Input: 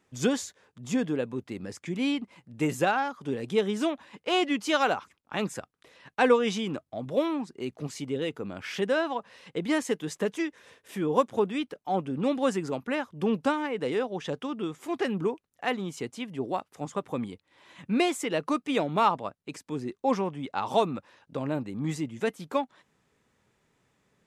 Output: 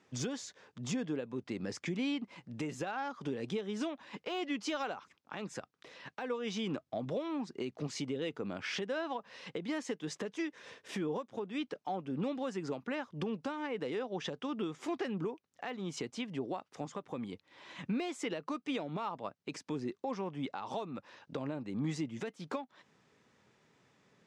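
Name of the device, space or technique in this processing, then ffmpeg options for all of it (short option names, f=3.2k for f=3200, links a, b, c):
broadcast voice chain: -af "highpass=110,lowpass=5.9k,deesser=0.85,acompressor=threshold=-36dB:ratio=3,equalizer=f=5.5k:t=o:w=0.72:g=3.5,alimiter=level_in=5.5dB:limit=-24dB:level=0:latency=1:release=298,volume=-5.5dB,volume=2.5dB"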